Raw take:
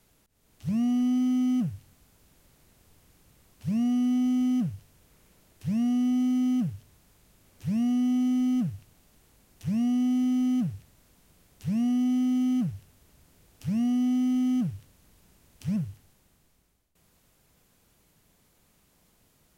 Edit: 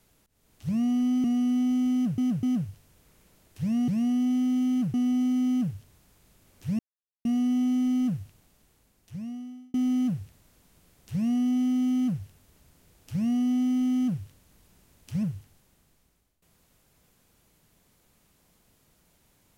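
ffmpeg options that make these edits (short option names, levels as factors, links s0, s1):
-filter_complex "[0:a]asplit=8[s0][s1][s2][s3][s4][s5][s6][s7];[s0]atrim=end=1.242[s8];[s1]atrim=start=3.788:end=4.732[s9];[s2]atrim=start=4.478:end=4.732[s10];[s3]atrim=start=4.478:end=5.932[s11];[s4]atrim=start=11.668:end=12.732[s12];[s5]atrim=start=5.928:end=7.78,asetpts=PTS-STARTPTS,afade=t=out:st=1.848:d=0.004:c=hsin,apad=pad_dur=0.46[s13];[s6]atrim=start=7.78:end=10.27,asetpts=PTS-STARTPTS,afade=t=in:d=0.004:c=hsin,afade=t=out:st=0.96:d=1.53[s14];[s7]atrim=start=10.27,asetpts=PTS-STARTPTS,afade=t=in:d=0.004:c=hsin[s15];[s8][s9]acrossfade=d=0.004:c1=hsin:c2=hsin[s16];[s16][s10]acrossfade=d=0.004:c1=hsin:c2=hsin[s17];[s17][s11]acrossfade=d=0.004:c1=hsin:c2=hsin[s18];[s18][s12]acrossfade=d=0.004:c1=hsin:c2=hsin[s19];[s13][s14][s15]concat=n=3:v=0:a=1[s20];[s19][s20]acrossfade=d=0.004:c1=hsin:c2=hsin"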